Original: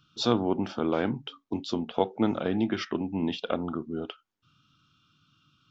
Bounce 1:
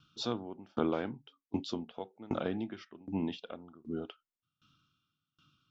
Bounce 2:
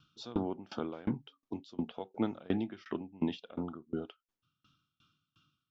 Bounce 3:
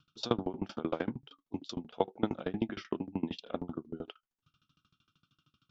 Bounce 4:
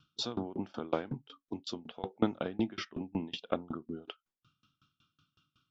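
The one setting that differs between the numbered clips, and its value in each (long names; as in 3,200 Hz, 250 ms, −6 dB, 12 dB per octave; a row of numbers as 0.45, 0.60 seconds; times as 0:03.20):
tremolo with a ramp in dB, speed: 1.3, 2.8, 13, 5.4 Hertz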